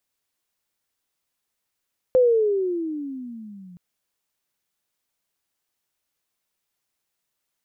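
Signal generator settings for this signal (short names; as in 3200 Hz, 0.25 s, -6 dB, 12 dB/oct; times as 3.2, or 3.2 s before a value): gliding synth tone sine, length 1.62 s, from 519 Hz, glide -19 st, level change -29 dB, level -12 dB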